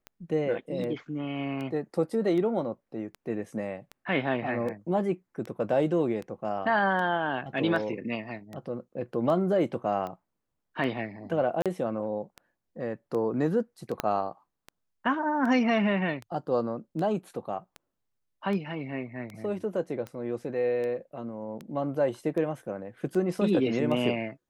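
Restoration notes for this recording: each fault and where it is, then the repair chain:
tick 78 rpm -25 dBFS
11.62–11.66 s: dropout 37 ms
14.00 s: pop -12 dBFS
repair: de-click; interpolate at 11.62 s, 37 ms

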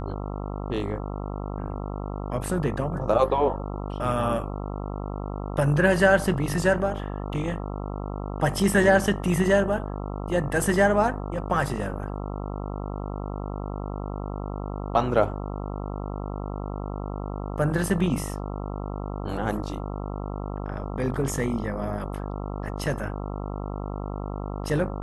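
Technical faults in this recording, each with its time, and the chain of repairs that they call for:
buzz 50 Hz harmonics 27 -32 dBFS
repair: de-hum 50 Hz, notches 27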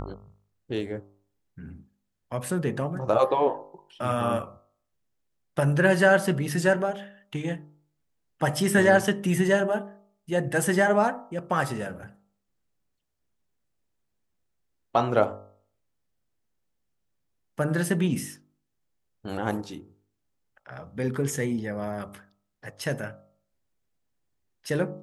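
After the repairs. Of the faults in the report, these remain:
nothing left

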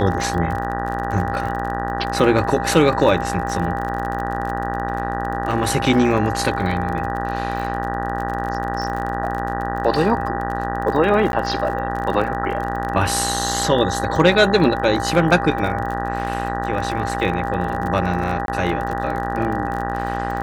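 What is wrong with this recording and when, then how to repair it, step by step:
buzz 60 Hz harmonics 32 -26 dBFS
crackle 39 per s -26 dBFS
whine 800 Hz -25 dBFS
11.32–11.33 s: dropout 11 ms
18.46–18.48 s: dropout 22 ms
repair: de-click; de-hum 60 Hz, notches 32; band-stop 800 Hz, Q 30; interpolate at 11.32 s, 11 ms; interpolate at 18.46 s, 22 ms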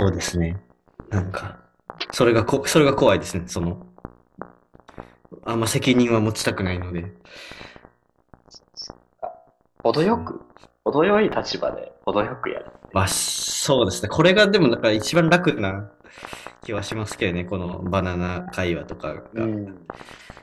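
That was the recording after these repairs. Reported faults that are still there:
nothing left

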